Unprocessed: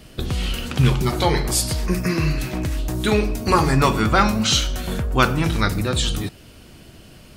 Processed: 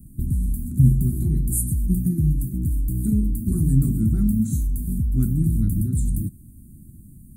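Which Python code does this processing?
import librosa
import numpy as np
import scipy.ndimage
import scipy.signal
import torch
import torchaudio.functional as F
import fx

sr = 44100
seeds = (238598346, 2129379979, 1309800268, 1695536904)

y = scipy.signal.sosfilt(scipy.signal.cheby2(4, 40, [480.0, 5500.0], 'bandstop', fs=sr, output='sos'), x)
y = y * 10.0 ** (2.0 / 20.0)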